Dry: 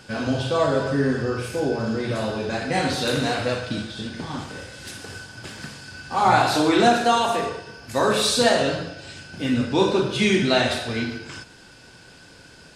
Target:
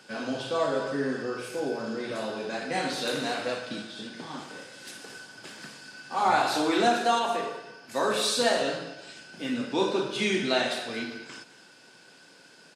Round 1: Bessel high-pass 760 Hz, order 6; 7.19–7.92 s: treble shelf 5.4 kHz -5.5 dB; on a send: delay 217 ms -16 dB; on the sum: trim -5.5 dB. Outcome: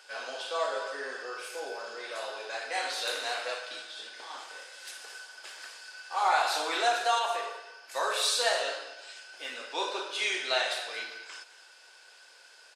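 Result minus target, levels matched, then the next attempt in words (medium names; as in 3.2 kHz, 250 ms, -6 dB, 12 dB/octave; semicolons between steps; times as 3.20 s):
250 Hz band -17.5 dB
Bessel high-pass 240 Hz, order 6; 7.19–7.92 s: treble shelf 5.4 kHz -5.5 dB; on a send: delay 217 ms -16 dB; on the sum: trim -5.5 dB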